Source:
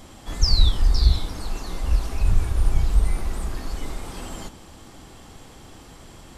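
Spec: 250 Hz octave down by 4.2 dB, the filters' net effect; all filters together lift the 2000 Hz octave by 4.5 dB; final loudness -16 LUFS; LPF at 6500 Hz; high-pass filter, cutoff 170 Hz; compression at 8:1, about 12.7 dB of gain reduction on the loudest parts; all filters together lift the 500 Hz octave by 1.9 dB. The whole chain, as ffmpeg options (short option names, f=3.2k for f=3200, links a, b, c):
-af "highpass=170,lowpass=6.5k,equalizer=f=250:t=o:g=-5.5,equalizer=f=500:t=o:g=4,equalizer=f=2k:t=o:g=5.5,acompressor=threshold=-35dB:ratio=8,volume=23.5dB"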